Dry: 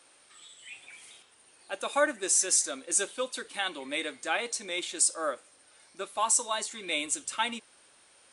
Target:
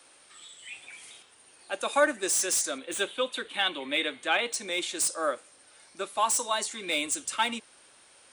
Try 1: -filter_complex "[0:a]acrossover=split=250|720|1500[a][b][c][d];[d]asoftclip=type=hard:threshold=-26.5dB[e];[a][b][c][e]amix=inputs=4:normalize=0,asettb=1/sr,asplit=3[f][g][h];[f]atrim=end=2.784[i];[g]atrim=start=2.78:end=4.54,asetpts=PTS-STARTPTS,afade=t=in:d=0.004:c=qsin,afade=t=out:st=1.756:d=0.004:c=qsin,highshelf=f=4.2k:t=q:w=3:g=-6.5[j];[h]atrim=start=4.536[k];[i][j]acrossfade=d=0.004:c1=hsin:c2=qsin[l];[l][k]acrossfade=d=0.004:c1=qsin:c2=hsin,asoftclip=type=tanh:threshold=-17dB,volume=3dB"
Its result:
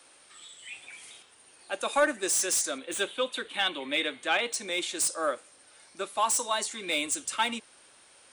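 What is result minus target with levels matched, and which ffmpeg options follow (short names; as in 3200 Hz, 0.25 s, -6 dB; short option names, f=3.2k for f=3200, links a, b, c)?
soft clip: distortion +11 dB
-filter_complex "[0:a]acrossover=split=250|720|1500[a][b][c][d];[d]asoftclip=type=hard:threshold=-26.5dB[e];[a][b][c][e]amix=inputs=4:normalize=0,asettb=1/sr,asplit=3[f][g][h];[f]atrim=end=2.784[i];[g]atrim=start=2.78:end=4.54,asetpts=PTS-STARTPTS,afade=t=in:d=0.004:c=qsin,afade=t=out:st=1.756:d=0.004:c=qsin,highshelf=f=4.2k:t=q:w=3:g=-6.5[j];[h]atrim=start=4.536[k];[i][j]acrossfade=d=0.004:c1=hsin:c2=qsin[l];[l][k]acrossfade=d=0.004:c1=qsin:c2=hsin,asoftclip=type=tanh:threshold=-10.5dB,volume=3dB"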